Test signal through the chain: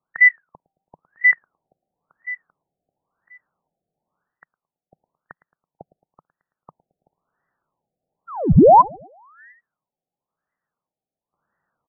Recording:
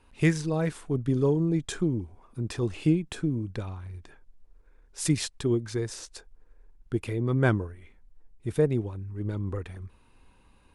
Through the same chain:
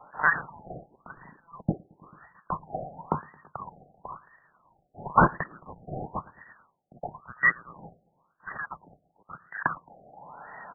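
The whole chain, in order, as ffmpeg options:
-filter_complex "[0:a]adynamicequalizer=threshold=0.0158:dfrequency=280:dqfactor=1:tfrequency=280:tqfactor=1:attack=5:release=100:ratio=0.375:range=2:mode=cutabove:tftype=bell,apsyclip=22dB,lowpass=f=3k:t=q:w=0.5098,lowpass=f=3k:t=q:w=0.6013,lowpass=f=3k:t=q:w=0.9,lowpass=f=3k:t=q:w=2.563,afreqshift=-3500,equalizer=f=160:w=1.7:g=10.5,asplit=2[a][b];[b]adelay=110,lowpass=f=2k:p=1,volume=-20dB,asplit=2[c][d];[d]adelay=110,lowpass=f=2k:p=1,volume=0.54,asplit=2[e][f];[f]adelay=110,lowpass=f=2k:p=1,volume=0.54,asplit=2[g][h];[h]adelay=110,lowpass=f=2k:p=1,volume=0.54[i];[c][e][g][i]amix=inputs=4:normalize=0[j];[a][j]amix=inputs=2:normalize=0,crystalizer=i=3.5:c=0,areverse,acompressor=threshold=-12dB:ratio=6,areverse,afftfilt=real='re*lt(b*sr/1024,770*pow(2000/770,0.5+0.5*sin(2*PI*0.97*pts/sr)))':imag='im*lt(b*sr/1024,770*pow(2000/770,0.5+0.5*sin(2*PI*0.97*pts/sr)))':win_size=1024:overlap=0.75,volume=5.5dB"

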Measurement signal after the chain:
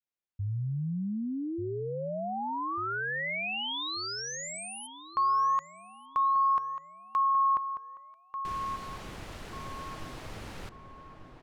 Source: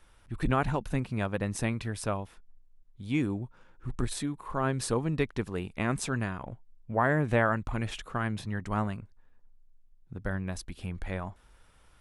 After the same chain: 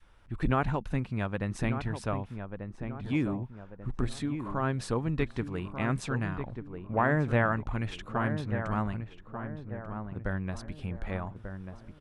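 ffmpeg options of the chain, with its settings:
-filter_complex "[0:a]aemphasis=mode=reproduction:type=50fm,asplit=2[a][b];[b]adelay=1190,lowpass=f=1.5k:p=1,volume=-8dB,asplit=2[c][d];[d]adelay=1190,lowpass=f=1.5k:p=1,volume=0.42,asplit=2[e][f];[f]adelay=1190,lowpass=f=1.5k:p=1,volume=0.42,asplit=2[g][h];[h]adelay=1190,lowpass=f=1.5k:p=1,volume=0.42,asplit=2[i][j];[j]adelay=1190,lowpass=f=1.5k:p=1,volume=0.42[k];[a][c][e][g][i][k]amix=inputs=6:normalize=0,adynamicequalizer=threshold=0.00891:dfrequency=480:dqfactor=0.77:tfrequency=480:tqfactor=0.77:attack=5:release=100:ratio=0.375:range=2:mode=cutabove:tftype=bell"

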